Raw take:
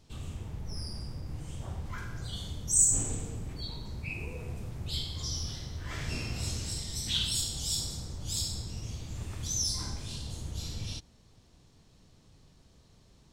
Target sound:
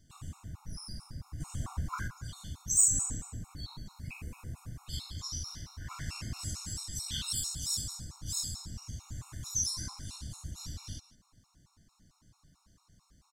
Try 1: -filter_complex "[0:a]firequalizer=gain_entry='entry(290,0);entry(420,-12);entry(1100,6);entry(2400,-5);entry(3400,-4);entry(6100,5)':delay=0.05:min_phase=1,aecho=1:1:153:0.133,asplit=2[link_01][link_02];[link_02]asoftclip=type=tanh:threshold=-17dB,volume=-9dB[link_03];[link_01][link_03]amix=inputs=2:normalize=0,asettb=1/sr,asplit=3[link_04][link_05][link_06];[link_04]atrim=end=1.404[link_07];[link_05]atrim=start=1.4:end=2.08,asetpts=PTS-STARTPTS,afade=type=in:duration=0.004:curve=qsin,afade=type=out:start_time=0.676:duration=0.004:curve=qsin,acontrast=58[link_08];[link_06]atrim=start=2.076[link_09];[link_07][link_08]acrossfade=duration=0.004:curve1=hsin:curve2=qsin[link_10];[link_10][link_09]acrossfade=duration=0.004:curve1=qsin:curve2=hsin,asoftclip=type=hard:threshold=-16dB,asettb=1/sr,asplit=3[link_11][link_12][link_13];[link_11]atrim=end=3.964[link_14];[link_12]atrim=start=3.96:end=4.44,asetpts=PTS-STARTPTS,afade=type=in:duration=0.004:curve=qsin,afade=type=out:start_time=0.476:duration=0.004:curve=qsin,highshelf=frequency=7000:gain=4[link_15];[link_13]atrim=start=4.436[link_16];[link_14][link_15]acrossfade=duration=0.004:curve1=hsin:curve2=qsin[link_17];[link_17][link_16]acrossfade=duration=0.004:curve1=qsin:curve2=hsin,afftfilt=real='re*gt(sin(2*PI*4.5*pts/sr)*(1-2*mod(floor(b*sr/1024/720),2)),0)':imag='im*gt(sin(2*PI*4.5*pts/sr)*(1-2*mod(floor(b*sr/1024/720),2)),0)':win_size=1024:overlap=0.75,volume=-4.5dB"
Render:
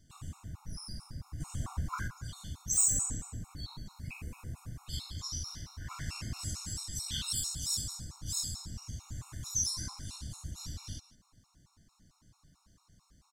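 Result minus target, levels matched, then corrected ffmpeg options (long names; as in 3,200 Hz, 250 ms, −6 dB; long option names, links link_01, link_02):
hard clipping: distortion +16 dB
-filter_complex "[0:a]firequalizer=gain_entry='entry(290,0);entry(420,-12);entry(1100,6);entry(2400,-5);entry(3400,-4);entry(6100,5)':delay=0.05:min_phase=1,aecho=1:1:153:0.133,asplit=2[link_01][link_02];[link_02]asoftclip=type=tanh:threshold=-17dB,volume=-9dB[link_03];[link_01][link_03]amix=inputs=2:normalize=0,asettb=1/sr,asplit=3[link_04][link_05][link_06];[link_04]atrim=end=1.404[link_07];[link_05]atrim=start=1.4:end=2.08,asetpts=PTS-STARTPTS,afade=type=in:duration=0.004:curve=qsin,afade=type=out:start_time=0.676:duration=0.004:curve=qsin,acontrast=58[link_08];[link_06]atrim=start=2.076[link_09];[link_07][link_08]acrossfade=duration=0.004:curve1=hsin:curve2=qsin[link_10];[link_10][link_09]acrossfade=duration=0.004:curve1=qsin:curve2=hsin,asoftclip=type=hard:threshold=-9.5dB,asettb=1/sr,asplit=3[link_11][link_12][link_13];[link_11]atrim=end=3.964[link_14];[link_12]atrim=start=3.96:end=4.44,asetpts=PTS-STARTPTS,afade=type=in:duration=0.004:curve=qsin,afade=type=out:start_time=0.476:duration=0.004:curve=qsin,highshelf=frequency=7000:gain=4[link_15];[link_13]atrim=start=4.436[link_16];[link_14][link_15]acrossfade=duration=0.004:curve1=hsin:curve2=qsin[link_17];[link_17][link_16]acrossfade=duration=0.004:curve1=qsin:curve2=hsin,afftfilt=real='re*gt(sin(2*PI*4.5*pts/sr)*(1-2*mod(floor(b*sr/1024/720),2)),0)':imag='im*gt(sin(2*PI*4.5*pts/sr)*(1-2*mod(floor(b*sr/1024/720),2)),0)':win_size=1024:overlap=0.75,volume=-4.5dB"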